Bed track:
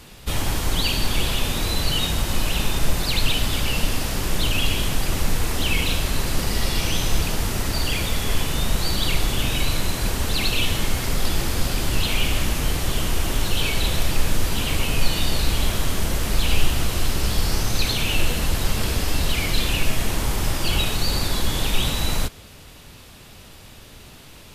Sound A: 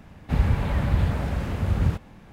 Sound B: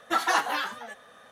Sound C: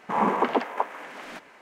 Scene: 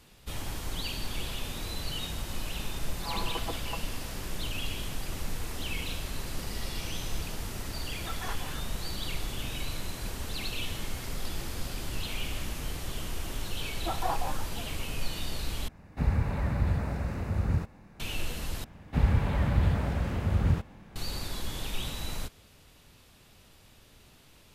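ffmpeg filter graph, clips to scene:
ffmpeg -i bed.wav -i cue0.wav -i cue1.wav -i cue2.wav -filter_complex "[2:a]asplit=2[link_01][link_02];[1:a]asplit=2[link_03][link_04];[0:a]volume=-13dB[link_05];[3:a]aecho=1:1:6:0.95[link_06];[link_02]lowpass=frequency=770:width_type=q:width=1.9[link_07];[link_03]equalizer=frequency=3200:width=5.8:gain=-11[link_08];[link_05]asplit=3[link_09][link_10][link_11];[link_09]atrim=end=15.684[link_12];[link_08]atrim=end=2.32,asetpts=PTS-STARTPTS,volume=-5.5dB[link_13];[link_10]atrim=start=17.996:end=18.644[link_14];[link_04]atrim=end=2.32,asetpts=PTS-STARTPTS,volume=-3dB[link_15];[link_11]atrim=start=20.956[link_16];[link_06]atrim=end=1.61,asetpts=PTS-STARTPTS,volume=-17.5dB,afade=type=in:duration=0.004:curve=hsin,afade=type=out:start_time=1.606:duration=0.004:curve=hsin,adelay=2930[link_17];[link_01]atrim=end=1.31,asetpts=PTS-STARTPTS,volume=-16.5dB,afade=type=in:duration=0.004:curve=hsin,afade=type=out:start_time=1.306:duration=0.004:curve=hsin,adelay=350154S[link_18];[link_07]atrim=end=1.31,asetpts=PTS-STARTPTS,volume=-8.5dB,afade=type=in:duration=0.004:curve=hsin,afade=type=out:start_time=1.306:duration=0.004:curve=hsin,adelay=13750[link_19];[link_12][link_13]acrossfade=duration=0.004:curve1=hsin:curve2=hsin[link_20];[link_20][link_14]acrossfade=duration=0.004:curve1=hsin:curve2=hsin[link_21];[link_21][link_15]acrossfade=duration=0.004:curve1=hsin:curve2=hsin[link_22];[link_22][link_16]acrossfade=duration=0.004:curve1=hsin:curve2=hsin[link_23];[link_23][link_17][link_18][link_19]amix=inputs=4:normalize=0" out.wav

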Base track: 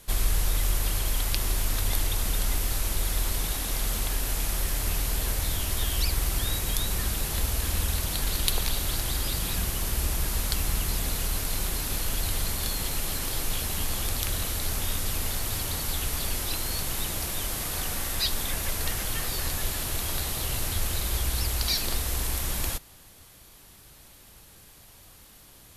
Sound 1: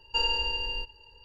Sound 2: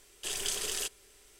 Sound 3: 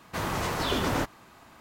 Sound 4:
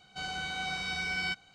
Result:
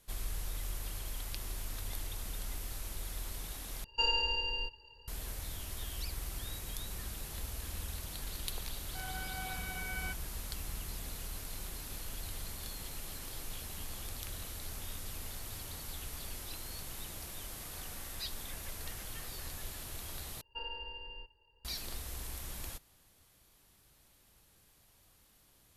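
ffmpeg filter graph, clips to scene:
ffmpeg -i bed.wav -i cue0.wav -i cue1.wav -i cue2.wav -i cue3.wav -filter_complex "[1:a]asplit=2[link_01][link_02];[0:a]volume=-14dB[link_03];[4:a]highpass=130,lowpass=2000[link_04];[link_02]lowpass=frequency=2900:width=0.5412,lowpass=frequency=2900:width=1.3066[link_05];[link_03]asplit=3[link_06][link_07][link_08];[link_06]atrim=end=3.844[link_09];[link_01]atrim=end=1.24,asetpts=PTS-STARTPTS,volume=-3.5dB[link_10];[link_07]atrim=start=5.076:end=20.414[link_11];[link_05]atrim=end=1.24,asetpts=PTS-STARTPTS,volume=-13dB[link_12];[link_08]atrim=start=21.646[link_13];[link_04]atrim=end=1.54,asetpts=PTS-STARTPTS,volume=-5.5dB,afade=type=in:duration=0.004:curve=hsin,afade=type=out:start_time=1.536:duration=0.004:curve=hsin,adelay=8790[link_14];[link_09][link_10]acrossfade=duration=0.004:curve1=hsin:curve2=hsin[link_15];[link_15][link_11]acrossfade=duration=0.004:curve1=hsin:curve2=hsin[link_16];[link_16][link_12]acrossfade=duration=0.004:curve1=hsin:curve2=hsin[link_17];[link_17][link_13]acrossfade=duration=0.004:curve1=hsin:curve2=hsin[link_18];[link_18][link_14]amix=inputs=2:normalize=0" out.wav

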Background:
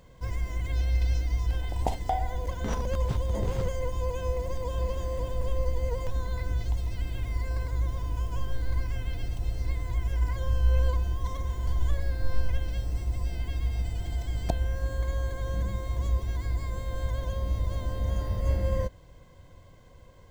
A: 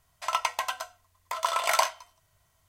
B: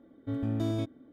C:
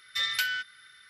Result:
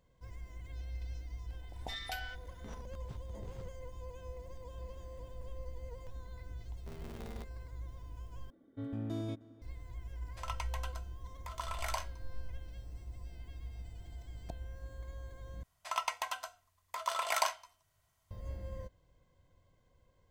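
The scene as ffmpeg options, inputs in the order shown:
ffmpeg -i bed.wav -i cue0.wav -i cue1.wav -i cue2.wav -filter_complex "[2:a]asplit=2[link_01][link_02];[1:a]asplit=2[link_03][link_04];[0:a]volume=-16.5dB[link_05];[link_01]aeval=exprs='val(0)*sgn(sin(2*PI*120*n/s))':channel_layout=same[link_06];[link_02]asplit=2[link_07][link_08];[link_08]adelay=309,volume=-21dB,highshelf=frequency=4000:gain=-6.95[link_09];[link_07][link_09]amix=inputs=2:normalize=0[link_10];[link_05]asplit=3[link_11][link_12][link_13];[link_11]atrim=end=8.504[link_14];[link_10]atrim=end=1.12,asetpts=PTS-STARTPTS,volume=-8dB[link_15];[link_12]atrim=start=9.616:end=15.634[link_16];[link_04]atrim=end=2.68,asetpts=PTS-STARTPTS,volume=-7.5dB[link_17];[link_13]atrim=start=18.306[link_18];[3:a]atrim=end=1.09,asetpts=PTS-STARTPTS,volume=-14.5dB,afade=type=in:duration=0.004:curve=hsin,afade=type=out:start_time=1.086:duration=0.004:curve=hsin,adelay=1730[link_19];[link_06]atrim=end=1.12,asetpts=PTS-STARTPTS,volume=-17.5dB,afade=type=in:duration=0.004:curve=hsin,afade=type=out:start_time=1.116:duration=0.004:curve=hsin,adelay=6590[link_20];[link_03]atrim=end=2.68,asetpts=PTS-STARTPTS,volume=-14.5dB,afade=type=in:duration=0.004:curve=hsin,afade=type=out:start_time=2.676:duration=0.004:curve=hsin,adelay=10150[link_21];[link_14][link_15]acrossfade=duration=0.004:curve1=hsin:curve2=hsin[link_22];[link_22][link_16]acrossfade=duration=0.004:curve1=hsin:curve2=hsin[link_23];[link_23][link_17]acrossfade=duration=0.004:curve1=hsin:curve2=hsin[link_24];[link_24][link_18]acrossfade=duration=0.004:curve1=hsin:curve2=hsin[link_25];[link_25][link_19][link_20][link_21]amix=inputs=4:normalize=0" out.wav

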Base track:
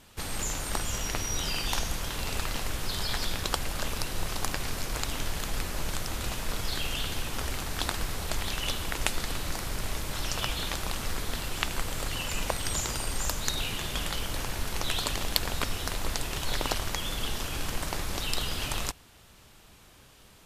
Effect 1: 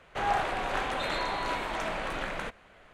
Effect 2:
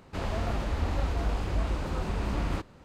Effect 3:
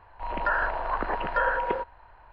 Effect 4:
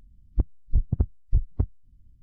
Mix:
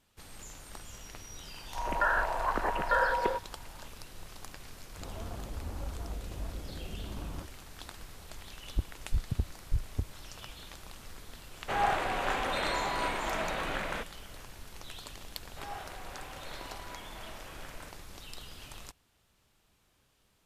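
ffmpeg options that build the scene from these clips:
ffmpeg -i bed.wav -i cue0.wav -i cue1.wav -i cue2.wav -i cue3.wav -filter_complex "[1:a]asplit=2[link_01][link_02];[0:a]volume=-15.5dB[link_03];[2:a]afwtdn=0.0251[link_04];[3:a]atrim=end=2.32,asetpts=PTS-STARTPTS,volume=-2dB,afade=type=in:duration=0.004:curve=hsin,afade=type=out:start_time=2.316:duration=0.004:curve=hsin,adelay=1550[link_05];[link_04]atrim=end=2.84,asetpts=PTS-STARTPTS,volume=-10.5dB,afade=type=in:duration=0.004:curve=hsin,afade=type=out:start_time=2.836:duration=0.004:curve=hsin,adelay=4840[link_06];[4:a]atrim=end=2.22,asetpts=PTS-STARTPTS,volume=-8dB,afade=type=in:duration=0.004:curve=hsin,afade=type=out:start_time=2.216:duration=0.004:curve=hsin,adelay=8390[link_07];[link_01]atrim=end=2.93,asetpts=PTS-STARTPTS,volume=-0.5dB,afade=type=in:duration=0.004:curve=hsin,afade=type=out:start_time=2.926:duration=0.004:curve=hsin,adelay=11530[link_08];[link_02]atrim=end=2.93,asetpts=PTS-STARTPTS,volume=-15dB,afade=type=in:duration=0.004:curve=hsin,afade=type=out:start_time=2.926:duration=0.004:curve=hsin,adelay=15410[link_09];[link_03][link_05][link_06][link_07][link_08][link_09]amix=inputs=6:normalize=0" out.wav

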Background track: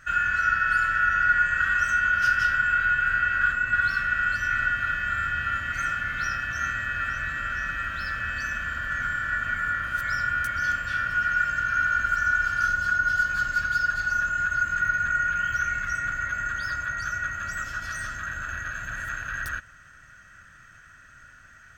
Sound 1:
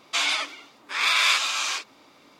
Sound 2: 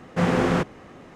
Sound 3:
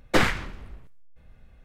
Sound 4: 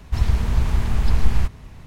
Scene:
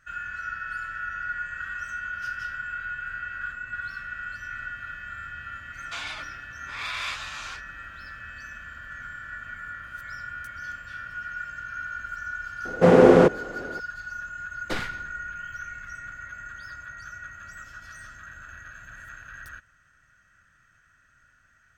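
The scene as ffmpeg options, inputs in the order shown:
ffmpeg -i bed.wav -i cue0.wav -i cue1.wav -i cue2.wav -filter_complex "[0:a]volume=-11dB[link_01];[1:a]highshelf=frequency=3600:gain=-8.5[link_02];[2:a]equalizer=frequency=460:width=0.88:gain=14[link_03];[3:a]equalizer=frequency=4200:width=1.5:gain=4.5[link_04];[link_02]atrim=end=2.39,asetpts=PTS-STARTPTS,volume=-9dB,afade=type=in:duration=0.004:curve=hsin,afade=type=out:start_time=2.386:duration=0.004:curve=hsin,adelay=5780[link_05];[link_03]atrim=end=1.15,asetpts=PTS-STARTPTS,volume=-1.5dB,afade=type=in:duration=0.004:curve=hsin,afade=type=out:start_time=1.146:duration=0.004:curve=hsin,adelay=12650[link_06];[link_04]atrim=end=1.64,asetpts=PTS-STARTPTS,volume=-11dB,afade=type=in:duration=0.004:curve=hsin,afade=type=out:start_time=1.636:duration=0.004:curve=hsin,adelay=14560[link_07];[link_01][link_05][link_06][link_07]amix=inputs=4:normalize=0" out.wav

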